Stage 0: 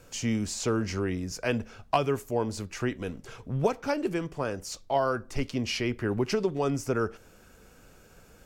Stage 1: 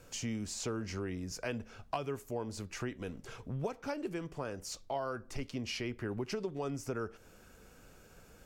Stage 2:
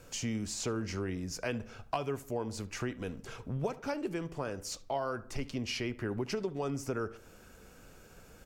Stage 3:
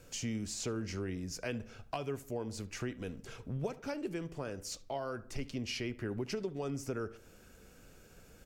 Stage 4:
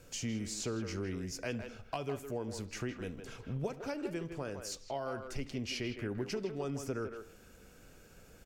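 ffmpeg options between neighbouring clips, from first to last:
ffmpeg -i in.wav -af "acompressor=threshold=-36dB:ratio=2,volume=-3dB" out.wav
ffmpeg -i in.wav -filter_complex "[0:a]asplit=2[link_01][link_02];[link_02]adelay=72,lowpass=frequency=2100:poles=1,volume=-17dB,asplit=2[link_03][link_04];[link_04]adelay=72,lowpass=frequency=2100:poles=1,volume=0.47,asplit=2[link_05][link_06];[link_06]adelay=72,lowpass=frequency=2100:poles=1,volume=0.47,asplit=2[link_07][link_08];[link_08]adelay=72,lowpass=frequency=2100:poles=1,volume=0.47[link_09];[link_01][link_03][link_05][link_07][link_09]amix=inputs=5:normalize=0,volume=2.5dB" out.wav
ffmpeg -i in.wav -af "equalizer=frequency=990:width=1.3:gain=-5,volume=-2dB" out.wav
ffmpeg -i in.wav -filter_complex "[0:a]asplit=2[link_01][link_02];[link_02]adelay=160,highpass=300,lowpass=3400,asoftclip=type=hard:threshold=-33dB,volume=-7dB[link_03];[link_01][link_03]amix=inputs=2:normalize=0" out.wav

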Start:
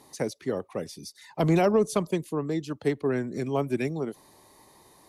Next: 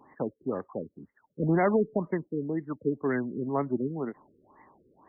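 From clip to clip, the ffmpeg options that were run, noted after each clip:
ffmpeg -i in.wav -af "equalizer=frequency=250:width_type=o:width=1:gain=6,equalizer=frequency=1000:width_type=o:width=1:gain=6,equalizer=frequency=2000:width_type=o:width=1:gain=9,equalizer=frequency=4000:width_type=o:width=1:gain=11,afftfilt=real='re*lt(b*sr/1024,510*pow(2200/510,0.5+0.5*sin(2*PI*2*pts/sr)))':imag='im*lt(b*sr/1024,510*pow(2200/510,0.5+0.5*sin(2*PI*2*pts/sr)))':win_size=1024:overlap=0.75,volume=-6dB" out.wav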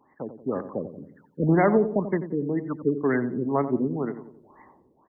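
ffmpeg -i in.wav -filter_complex "[0:a]dynaudnorm=framelen=160:gausssize=5:maxgain=10dB,asplit=2[link_01][link_02];[link_02]adelay=89,lowpass=frequency=880:poles=1,volume=-9.5dB,asplit=2[link_03][link_04];[link_04]adelay=89,lowpass=frequency=880:poles=1,volume=0.51,asplit=2[link_05][link_06];[link_06]adelay=89,lowpass=frequency=880:poles=1,volume=0.51,asplit=2[link_07][link_08];[link_08]adelay=89,lowpass=frequency=880:poles=1,volume=0.51,asplit=2[link_09][link_10];[link_10]adelay=89,lowpass=frequency=880:poles=1,volume=0.51,asplit=2[link_11][link_12];[link_12]adelay=89,lowpass=frequency=880:poles=1,volume=0.51[link_13];[link_03][link_05][link_07][link_09][link_11][link_13]amix=inputs=6:normalize=0[link_14];[link_01][link_14]amix=inputs=2:normalize=0,volume=-5.5dB" out.wav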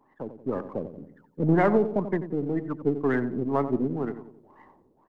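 ffmpeg -i in.wav -af "aeval=exprs='if(lt(val(0),0),0.708*val(0),val(0))':channel_layout=same" out.wav

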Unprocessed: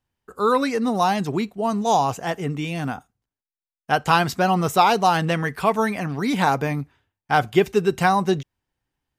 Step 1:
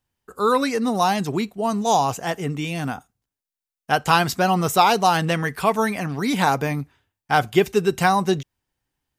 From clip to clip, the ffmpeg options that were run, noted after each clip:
ffmpeg -i in.wav -af "highshelf=frequency=4500:gain=6" out.wav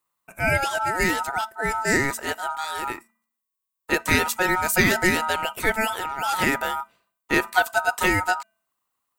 ffmpeg -i in.wav -af "bandreject=frequency=434.5:width_type=h:width=4,bandreject=frequency=869:width_type=h:width=4,bandreject=frequency=1303.5:width_type=h:width=4,bandreject=frequency=1738:width_type=h:width=4,aeval=exprs='val(0)*sin(2*PI*1100*n/s)':channel_layout=same,aexciter=amount=2.7:drive=3.7:freq=7400" out.wav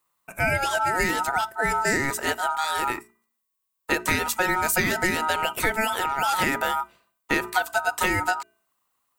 ffmpeg -i in.wav -af "bandreject=frequency=60:width_type=h:width=6,bandreject=frequency=120:width_type=h:width=6,bandreject=frequency=180:width_type=h:width=6,bandreject=frequency=240:width_type=h:width=6,bandreject=frequency=300:width_type=h:width=6,bandreject=frequency=360:width_type=h:width=6,bandreject=frequency=420:width_type=h:width=6,acompressor=threshold=-24dB:ratio=6,volume=4.5dB" out.wav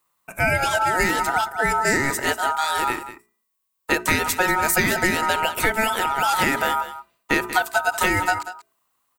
ffmpeg -i in.wav -af "aecho=1:1:188:0.224,volume=3dB" out.wav

